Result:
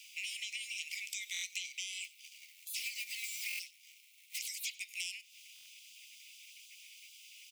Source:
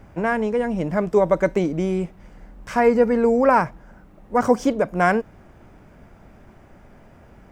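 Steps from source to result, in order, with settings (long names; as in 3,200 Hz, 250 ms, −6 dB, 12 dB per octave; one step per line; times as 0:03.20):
0:02.04–0:04.39: mu-law and A-law mismatch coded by A
gate on every frequency bin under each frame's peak −30 dB weak
Butterworth high-pass 2,200 Hz 96 dB per octave
downward compressor 8 to 1, threshold −53 dBFS, peak gain reduction 16 dB
single-tap delay 95 ms −22 dB
buffer that repeats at 0:01.32/0:03.48/0:05.54, samples 1,024, times 4
level +15.5 dB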